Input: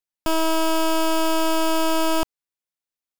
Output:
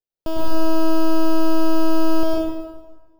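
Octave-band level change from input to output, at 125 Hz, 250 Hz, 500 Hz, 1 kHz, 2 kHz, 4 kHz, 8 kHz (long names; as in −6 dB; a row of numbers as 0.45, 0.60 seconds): can't be measured, +4.5 dB, +0.5 dB, −4.0 dB, −6.5 dB, −8.0 dB, −11.0 dB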